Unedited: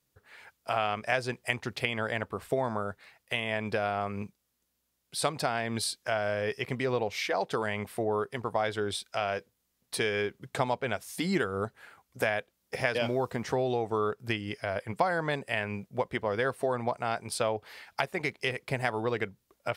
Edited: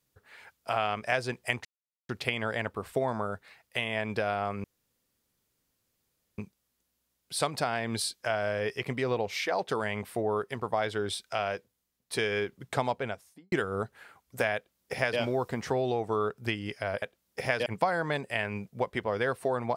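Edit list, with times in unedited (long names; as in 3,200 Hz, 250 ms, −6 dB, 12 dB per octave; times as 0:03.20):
0:01.65: splice in silence 0.44 s
0:04.20: splice in room tone 1.74 s
0:09.25–0:09.95: fade out, to −8 dB
0:10.71–0:11.34: fade out and dull
0:12.37–0:13.01: duplicate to 0:14.84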